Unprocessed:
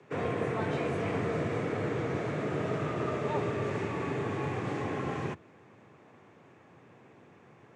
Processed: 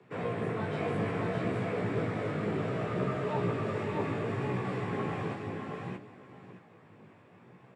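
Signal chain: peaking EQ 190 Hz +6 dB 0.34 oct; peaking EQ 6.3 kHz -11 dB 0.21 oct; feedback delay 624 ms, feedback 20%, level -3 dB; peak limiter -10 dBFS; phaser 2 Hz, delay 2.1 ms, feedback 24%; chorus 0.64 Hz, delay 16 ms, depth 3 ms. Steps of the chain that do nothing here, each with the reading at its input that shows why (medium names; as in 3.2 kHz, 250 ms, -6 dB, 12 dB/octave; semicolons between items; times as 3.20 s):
peak limiter -10 dBFS: peak at its input -17.0 dBFS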